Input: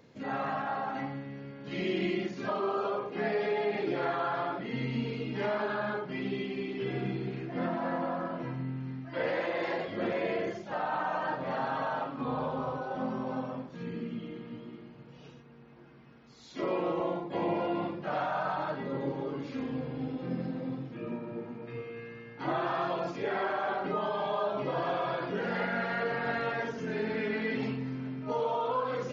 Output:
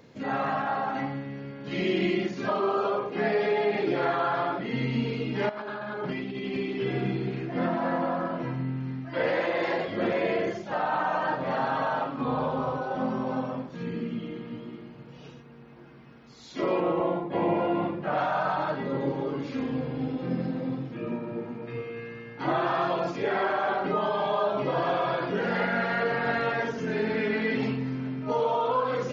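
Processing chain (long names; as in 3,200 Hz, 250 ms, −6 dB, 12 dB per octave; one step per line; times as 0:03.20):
0:05.49–0:06.57: compressor whose output falls as the input rises −39 dBFS, ratio −1
0:16.80–0:18.18: bass and treble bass +1 dB, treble −12 dB
level +5 dB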